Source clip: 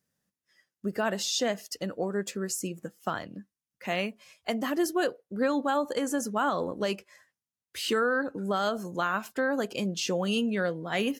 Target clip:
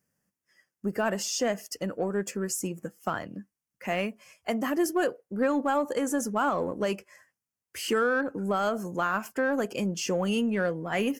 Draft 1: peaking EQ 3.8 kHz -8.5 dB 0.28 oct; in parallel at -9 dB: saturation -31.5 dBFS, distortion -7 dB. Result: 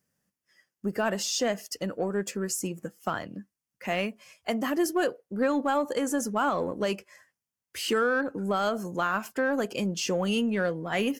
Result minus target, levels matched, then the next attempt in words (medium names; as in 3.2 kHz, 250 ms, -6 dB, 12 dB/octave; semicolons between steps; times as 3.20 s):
4 kHz band +2.5 dB
peaking EQ 3.8 kHz -20 dB 0.28 oct; in parallel at -9 dB: saturation -31.5 dBFS, distortion -7 dB